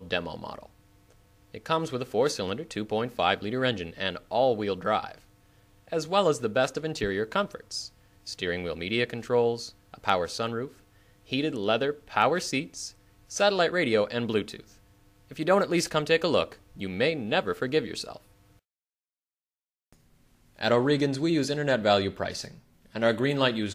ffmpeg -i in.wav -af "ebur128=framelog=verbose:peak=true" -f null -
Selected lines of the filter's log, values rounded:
Integrated loudness:
  I:         -27.4 LUFS
  Threshold: -38.5 LUFS
Loudness range:
  LRA:         4.7 LU
  Threshold: -48.7 LUFS
  LRA low:   -31.5 LUFS
  LRA high:  -26.8 LUFS
True peak:
  Peak:       -6.7 dBFS